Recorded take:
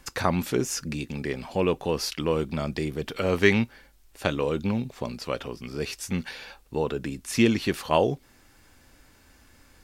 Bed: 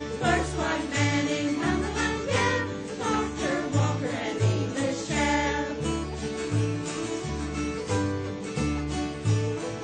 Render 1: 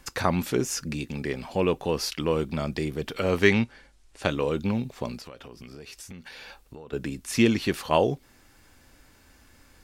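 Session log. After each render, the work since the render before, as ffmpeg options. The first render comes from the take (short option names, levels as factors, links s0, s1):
-filter_complex "[0:a]asettb=1/sr,asplit=3[s0][s1][s2];[s0]atrim=end=3.514[s3];[s1]atrim=start=3.51:end=4.23,asetpts=PTS-STARTPTS,afade=t=in:d=0.004:c=qsin,afade=t=out:st=0.716:d=0.004:c=qsin,lowpass=f=9700:w=0.5412,lowpass=f=9700:w=1.3066[s4];[s2]atrim=start=4.226[s5];[s3][s4]acrossfade=d=0.004:c1=hsin:c2=qsin[s6];[s6][s5]acrossfade=d=0.004:c1=qsin:c2=hsin,asettb=1/sr,asplit=3[s7][s8][s9];[s7]atrim=end=5.194[s10];[s8]atrim=start=5.19:end=6.93,asetpts=PTS-STARTPTS,afade=t=in:d=0.004:c=qsin,afade=t=out:st=1.736:d=0.004:c=qsin,acompressor=threshold=0.0112:ratio=10:attack=3.2:release=140:knee=1:detection=peak[s11];[s9]atrim=start=6.926[s12];[s10][s11]acrossfade=d=0.004:c1=hsin:c2=qsin[s13];[s13][s12]acrossfade=d=0.004:c1=qsin:c2=hsin"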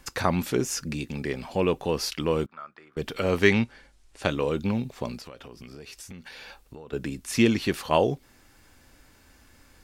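-filter_complex "[0:a]asettb=1/sr,asplit=3[s0][s1][s2];[s0]atrim=end=2.464[s3];[s1]atrim=start=2.46:end=2.97,asetpts=PTS-STARTPTS,afade=t=in:d=0.004:c=qsin,afade=t=out:st=0.506:d=0.004:c=qsin,bandpass=f=1300:t=q:w=5.3[s4];[s2]atrim=start=2.966[s5];[s3][s4]acrossfade=d=0.004:c1=hsin:c2=qsin[s6];[s6][s5]acrossfade=d=0.004:c1=qsin:c2=hsin"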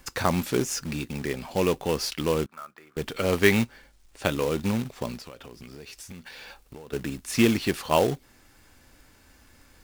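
-af "acrusher=bits=3:mode=log:mix=0:aa=0.000001"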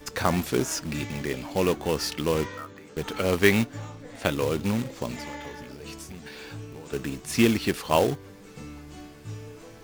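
-filter_complex "[1:a]volume=0.2[s0];[0:a][s0]amix=inputs=2:normalize=0"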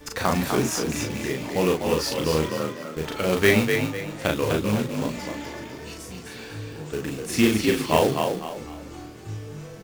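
-filter_complex "[0:a]asplit=2[s0][s1];[s1]adelay=38,volume=0.708[s2];[s0][s2]amix=inputs=2:normalize=0,asplit=5[s3][s4][s5][s6][s7];[s4]adelay=250,afreqshift=44,volume=0.531[s8];[s5]adelay=500,afreqshift=88,volume=0.176[s9];[s6]adelay=750,afreqshift=132,volume=0.0575[s10];[s7]adelay=1000,afreqshift=176,volume=0.0191[s11];[s3][s8][s9][s10][s11]amix=inputs=5:normalize=0"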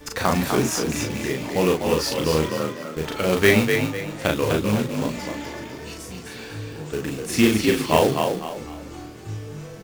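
-af "volume=1.26"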